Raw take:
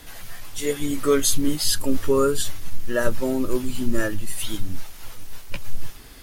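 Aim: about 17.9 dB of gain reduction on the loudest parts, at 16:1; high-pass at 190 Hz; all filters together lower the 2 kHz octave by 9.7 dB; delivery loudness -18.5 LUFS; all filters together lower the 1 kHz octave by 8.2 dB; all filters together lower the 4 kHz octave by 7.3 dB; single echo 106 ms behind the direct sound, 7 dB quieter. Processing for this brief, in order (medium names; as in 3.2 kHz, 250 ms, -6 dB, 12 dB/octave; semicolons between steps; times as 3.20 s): high-pass 190 Hz; peaking EQ 1 kHz -7 dB; peaking EQ 2 kHz -8.5 dB; peaking EQ 4 kHz -7 dB; compression 16:1, threshold -34 dBFS; delay 106 ms -7 dB; trim +20 dB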